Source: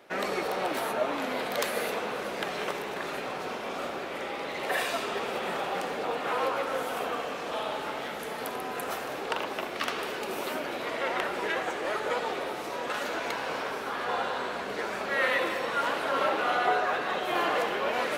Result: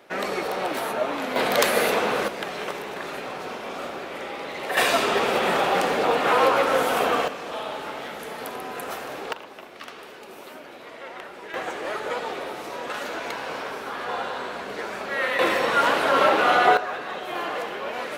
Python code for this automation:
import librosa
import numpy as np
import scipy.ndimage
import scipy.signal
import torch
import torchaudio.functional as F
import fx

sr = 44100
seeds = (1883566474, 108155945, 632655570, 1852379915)

y = fx.gain(x, sr, db=fx.steps((0.0, 3.0), (1.36, 9.5), (2.28, 1.5), (4.77, 10.0), (7.28, 1.0), (9.33, -8.5), (11.54, 1.0), (15.39, 8.5), (16.77, -2.0)))